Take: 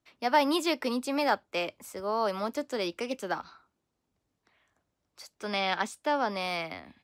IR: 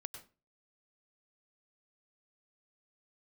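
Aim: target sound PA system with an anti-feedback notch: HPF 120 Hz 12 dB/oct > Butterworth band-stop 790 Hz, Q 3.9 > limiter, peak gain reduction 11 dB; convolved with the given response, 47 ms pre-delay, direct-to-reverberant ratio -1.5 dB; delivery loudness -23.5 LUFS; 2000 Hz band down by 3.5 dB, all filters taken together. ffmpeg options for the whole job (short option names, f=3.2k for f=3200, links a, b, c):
-filter_complex "[0:a]equalizer=f=2k:t=o:g=-4.5,asplit=2[a][b];[1:a]atrim=start_sample=2205,adelay=47[c];[b][c]afir=irnorm=-1:irlink=0,volume=5dB[d];[a][d]amix=inputs=2:normalize=0,highpass=120,asuperstop=centerf=790:order=8:qfactor=3.9,volume=8.5dB,alimiter=limit=-13.5dB:level=0:latency=1"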